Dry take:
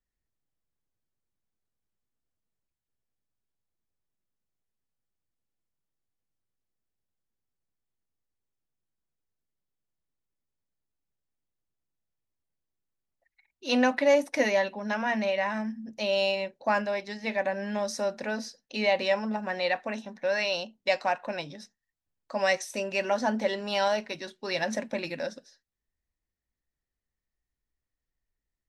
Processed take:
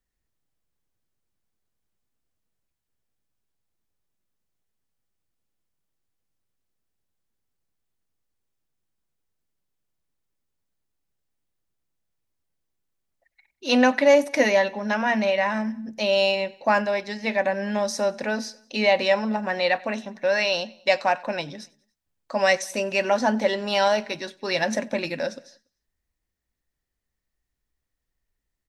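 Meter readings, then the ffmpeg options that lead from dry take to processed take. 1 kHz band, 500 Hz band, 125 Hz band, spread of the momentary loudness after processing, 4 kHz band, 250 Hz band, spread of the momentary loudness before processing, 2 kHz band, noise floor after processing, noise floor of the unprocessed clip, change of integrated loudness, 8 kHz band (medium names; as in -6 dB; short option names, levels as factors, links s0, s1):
+5.5 dB, +5.5 dB, no reading, 11 LU, +5.5 dB, +5.5 dB, 11 LU, +5.5 dB, -82 dBFS, under -85 dBFS, +5.5 dB, +5.5 dB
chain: -af "aecho=1:1:95|190|285:0.0631|0.0341|0.0184,volume=1.88"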